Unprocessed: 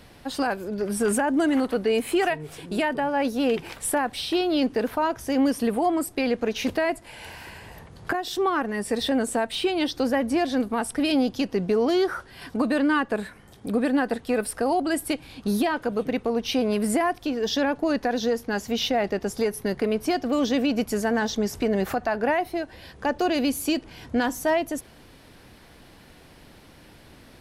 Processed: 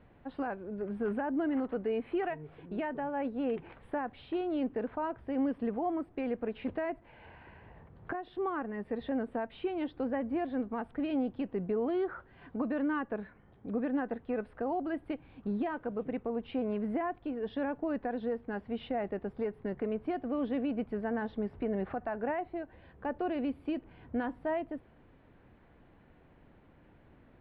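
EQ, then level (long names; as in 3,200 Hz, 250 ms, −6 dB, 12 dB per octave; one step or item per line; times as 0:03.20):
moving average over 7 samples
high-frequency loss of the air 490 metres
−8.5 dB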